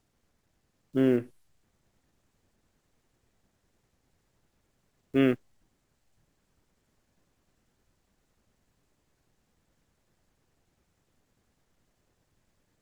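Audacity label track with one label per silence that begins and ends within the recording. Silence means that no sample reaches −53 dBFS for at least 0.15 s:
1.310000	5.140000	silence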